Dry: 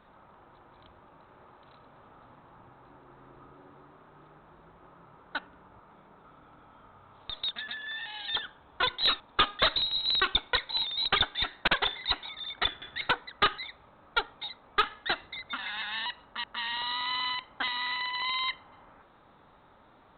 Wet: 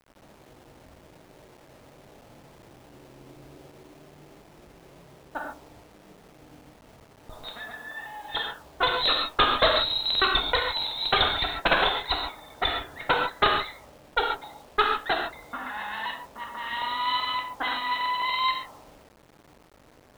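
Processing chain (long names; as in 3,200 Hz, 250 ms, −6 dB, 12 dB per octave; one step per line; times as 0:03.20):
reverb whose tail is shaped and stops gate 170 ms flat, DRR 0.5 dB
low-pass that shuts in the quiet parts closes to 410 Hz, open at −22 dBFS
parametric band 640 Hz +8 dB 1.3 octaves
bit reduction 9 bits
low-shelf EQ 340 Hz +3.5 dB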